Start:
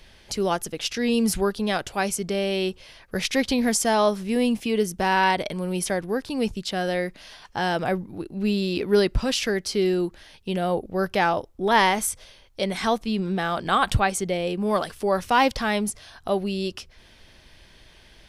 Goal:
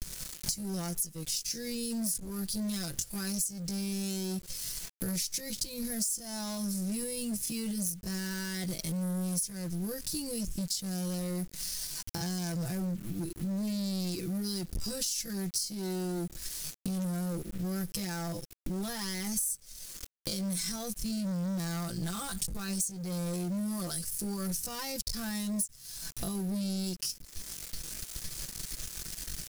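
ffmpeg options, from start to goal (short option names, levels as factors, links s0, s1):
-af "acontrast=22,alimiter=limit=0.188:level=0:latency=1:release=26,aecho=1:1:5.9:0.97,aeval=exprs='sgn(val(0))*max(abs(val(0))-0.00708,0)':c=same,bass=f=250:g=15,treble=f=4000:g=7,volume=4.22,asoftclip=hard,volume=0.237,agate=range=0.0224:threshold=0.01:ratio=3:detection=peak,atempo=0.62,aexciter=amount=6.1:drive=5.3:freq=4600,acrusher=bits=5:mix=0:aa=0.000001,acompressor=threshold=0.0224:ratio=6,equalizer=f=840:w=1.2:g=-7,volume=0.891"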